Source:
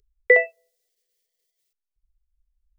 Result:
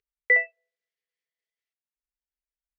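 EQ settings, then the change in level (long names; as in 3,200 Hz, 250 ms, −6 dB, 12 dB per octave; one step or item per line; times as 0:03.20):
resonant band-pass 1,900 Hz, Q 1.8
spectral tilt −2 dB per octave
0.0 dB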